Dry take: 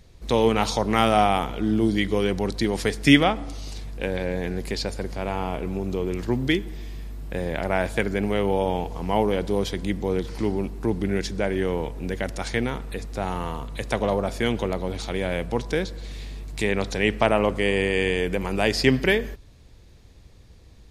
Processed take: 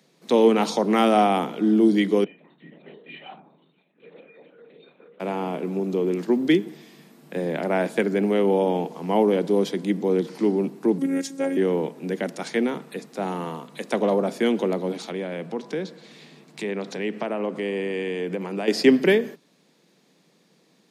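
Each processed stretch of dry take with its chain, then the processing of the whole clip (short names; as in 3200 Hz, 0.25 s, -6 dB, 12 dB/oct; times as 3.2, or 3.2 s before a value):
2.24–5.2 metallic resonator 220 Hz, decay 0.83 s, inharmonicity 0.03 + LPC vocoder at 8 kHz whisper
10.98–11.57 resonant high shelf 5600 Hz +7.5 dB, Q 1.5 + robotiser 273 Hz
15.1–18.68 high shelf 7800 Hz -10.5 dB + compressor 2.5:1, threshold -26 dBFS
whole clip: steep high-pass 150 Hz 96 dB/oct; dynamic EQ 320 Hz, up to +8 dB, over -36 dBFS, Q 0.74; gain -2.5 dB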